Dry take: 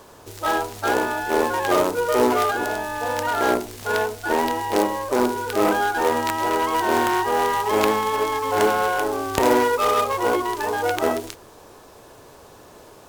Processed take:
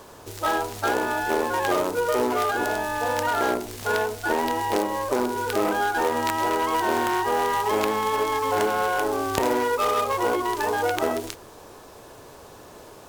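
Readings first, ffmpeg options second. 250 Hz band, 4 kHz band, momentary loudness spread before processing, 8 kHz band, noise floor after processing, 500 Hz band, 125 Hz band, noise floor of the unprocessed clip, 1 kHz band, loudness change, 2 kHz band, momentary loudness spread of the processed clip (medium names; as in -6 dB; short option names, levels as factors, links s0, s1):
-3.5 dB, -2.5 dB, 6 LU, -2.0 dB, -46 dBFS, -3.0 dB, -1.5 dB, -47 dBFS, -2.5 dB, -2.5 dB, -2.0 dB, 3 LU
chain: -af "acompressor=threshold=0.0891:ratio=4,volume=1.12"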